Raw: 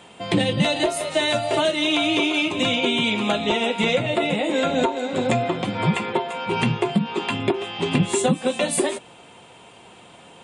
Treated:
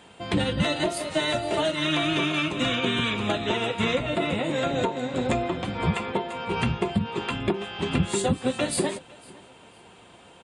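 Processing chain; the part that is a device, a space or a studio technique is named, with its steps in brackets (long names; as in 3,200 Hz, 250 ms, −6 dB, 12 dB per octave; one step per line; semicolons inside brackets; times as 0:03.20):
repeating echo 506 ms, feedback 27%, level −23.5 dB
octave pedal (pitch-shifted copies added −12 semitones −6 dB)
level −5 dB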